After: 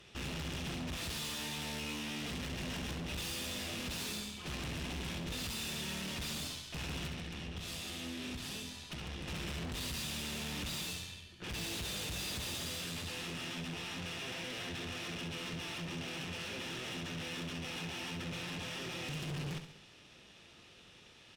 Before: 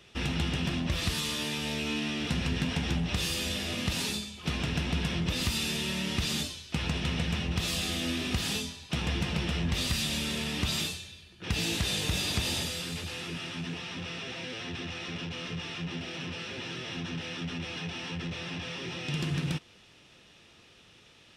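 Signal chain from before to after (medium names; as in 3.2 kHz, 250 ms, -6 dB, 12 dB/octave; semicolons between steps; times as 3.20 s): 7.07–9.28 s: compression, threshold -37 dBFS, peak gain reduction 12 dB; valve stage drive 41 dB, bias 0.7; feedback delay 68 ms, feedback 46%, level -9 dB; trim +2 dB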